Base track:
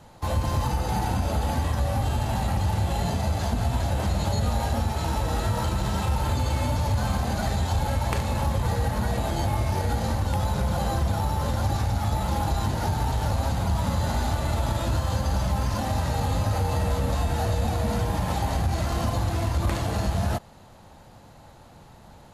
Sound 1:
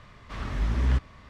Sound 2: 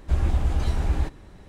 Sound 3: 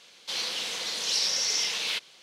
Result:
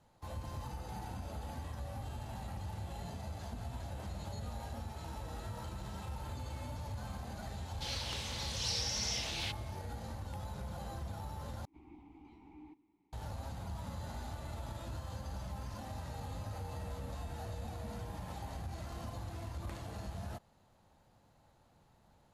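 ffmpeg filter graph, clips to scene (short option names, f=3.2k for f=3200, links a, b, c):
-filter_complex "[0:a]volume=-18dB[a];[2:a]asplit=3[b][c][d];[b]bandpass=f=300:t=q:w=8,volume=0dB[e];[c]bandpass=f=870:t=q:w=8,volume=-6dB[f];[d]bandpass=f=2.24k:t=q:w=8,volume=-9dB[g];[e][f][g]amix=inputs=3:normalize=0[h];[a]asplit=2[i][j];[i]atrim=end=11.654[k];[h]atrim=end=1.48,asetpts=PTS-STARTPTS,volume=-12.5dB[l];[j]atrim=start=13.126[m];[3:a]atrim=end=2.22,asetpts=PTS-STARTPTS,volume=-10dB,afade=t=in:d=0.004:c=hsin,afade=t=out:st=2.216:d=0.004:c=hsin,adelay=7530[n];[k][l]acrossfade=d=0.004:c1=hsin:c2=hsin[o];[o][m]acrossfade=d=0.004:c1=hsin:c2=hsin[p];[p][n]amix=inputs=2:normalize=0"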